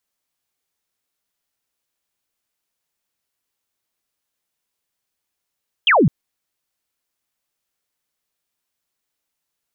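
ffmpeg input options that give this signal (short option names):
-f lavfi -i "aevalsrc='0.316*clip(t/0.002,0,1)*clip((0.21-t)/0.002,0,1)*sin(2*PI*3400*0.21/log(120/3400)*(exp(log(120/3400)*t/0.21)-1))':d=0.21:s=44100"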